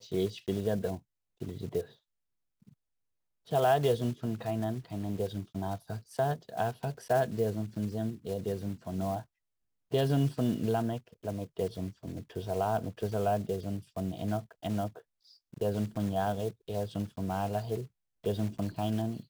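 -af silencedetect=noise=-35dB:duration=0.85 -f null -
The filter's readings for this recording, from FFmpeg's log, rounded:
silence_start: 1.81
silence_end: 3.52 | silence_duration: 1.71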